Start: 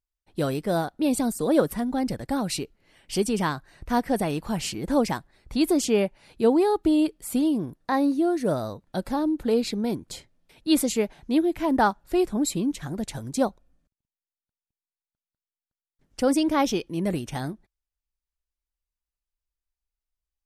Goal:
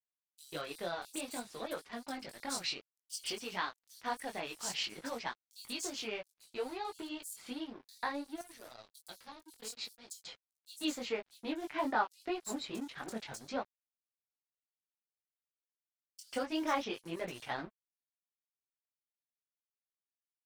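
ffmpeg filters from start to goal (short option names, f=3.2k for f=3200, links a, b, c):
-filter_complex "[0:a]acompressor=threshold=-24dB:ratio=6,flanger=delay=17:depth=5.7:speed=0.58,asetnsamples=n=441:p=0,asendcmd='8.27 bandpass f 8000;10.13 bandpass f 1900',bandpass=f=3.3k:t=q:w=0.56:csg=0,flanger=delay=2.3:depth=7:regen=-22:speed=1.7:shape=triangular,aeval=exprs='sgn(val(0))*max(abs(val(0))-0.0015,0)':c=same,acrossover=split=5300[a][b];[a]adelay=140[c];[c][b]amix=inputs=2:normalize=0,volume=7.5dB"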